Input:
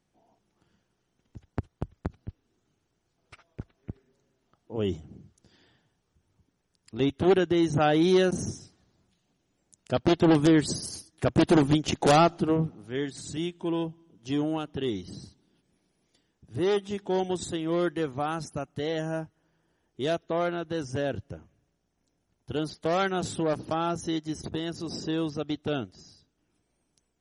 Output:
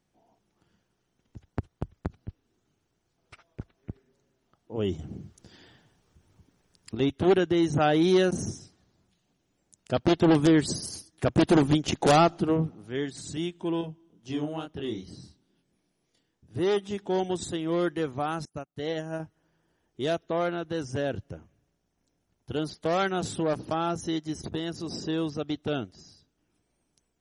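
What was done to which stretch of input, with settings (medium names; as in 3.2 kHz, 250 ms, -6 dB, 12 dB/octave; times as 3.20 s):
4.99–6.95 s: gain +8 dB
13.81–16.56 s: chorus 2.2 Hz
18.45–19.20 s: upward expansion 2.5:1, over -44 dBFS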